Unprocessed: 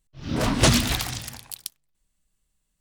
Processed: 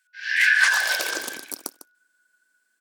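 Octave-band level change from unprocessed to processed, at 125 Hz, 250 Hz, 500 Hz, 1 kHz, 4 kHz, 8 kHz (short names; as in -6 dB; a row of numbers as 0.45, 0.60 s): under -35 dB, -20.0 dB, -9.0 dB, -3.0 dB, -1.0 dB, -2.0 dB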